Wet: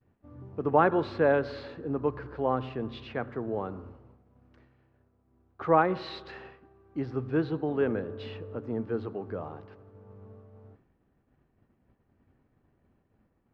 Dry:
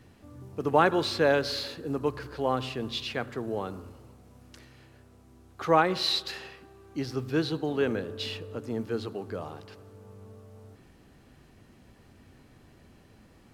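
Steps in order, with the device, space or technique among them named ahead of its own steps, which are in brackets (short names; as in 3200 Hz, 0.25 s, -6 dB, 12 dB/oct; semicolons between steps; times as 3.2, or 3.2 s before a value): hearing-loss simulation (LPF 1600 Hz 12 dB/oct; expander -46 dBFS)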